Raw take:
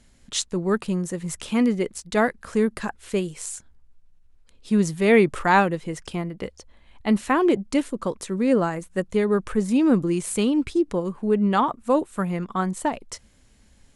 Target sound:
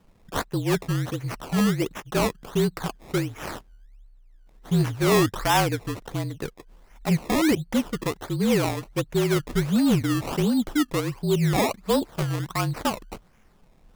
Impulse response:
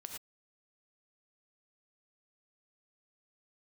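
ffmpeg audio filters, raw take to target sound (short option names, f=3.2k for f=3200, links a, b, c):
-af "afreqshift=-42,acrusher=samples=20:mix=1:aa=0.000001:lfo=1:lforange=20:lforate=1.4,asoftclip=type=tanh:threshold=-13dB"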